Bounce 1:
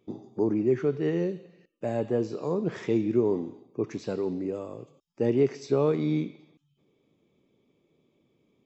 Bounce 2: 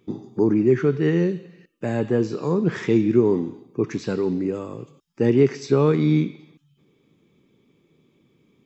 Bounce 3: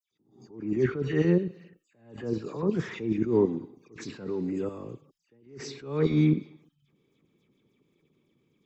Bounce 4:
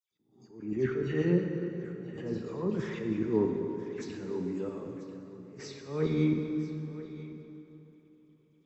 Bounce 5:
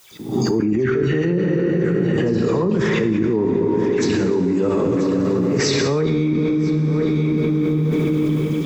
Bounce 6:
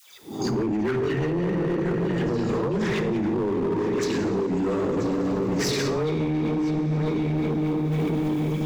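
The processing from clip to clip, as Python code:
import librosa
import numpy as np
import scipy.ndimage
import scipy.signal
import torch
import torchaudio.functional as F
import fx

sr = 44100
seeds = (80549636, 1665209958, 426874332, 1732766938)

y1 = fx.graphic_eq_15(x, sr, hz=(160, 630, 1600), db=(3, -8, 4))
y1 = y1 * 10.0 ** (7.5 / 20.0)
y2 = fx.level_steps(y1, sr, step_db=10)
y2 = fx.dispersion(y2, sr, late='lows', ms=115.0, hz=2800.0)
y2 = fx.attack_slew(y2, sr, db_per_s=110.0)
y3 = y2 + 10.0 ** (-15.5 / 20.0) * np.pad(y2, (int(990 * sr / 1000.0), 0))[:len(y2)]
y3 = fx.rev_plate(y3, sr, seeds[0], rt60_s=3.4, hf_ratio=0.65, predelay_ms=0, drr_db=3.5)
y3 = y3 * 10.0 ** (-5.0 / 20.0)
y4 = fx.echo_feedback(y3, sr, ms=304, feedback_pct=58, wet_db=-20.5)
y4 = fx.env_flatten(y4, sr, amount_pct=100)
y4 = y4 * 10.0 ** (3.5 / 20.0)
y5 = fx.dispersion(y4, sr, late='lows', ms=123.0, hz=430.0)
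y5 = np.clip(y5, -10.0 ** (-17.0 / 20.0), 10.0 ** (-17.0 / 20.0))
y5 = y5 * 10.0 ** (-4.0 / 20.0)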